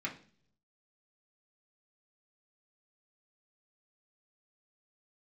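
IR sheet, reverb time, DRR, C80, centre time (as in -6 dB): 0.50 s, -3.5 dB, 17.0 dB, 14 ms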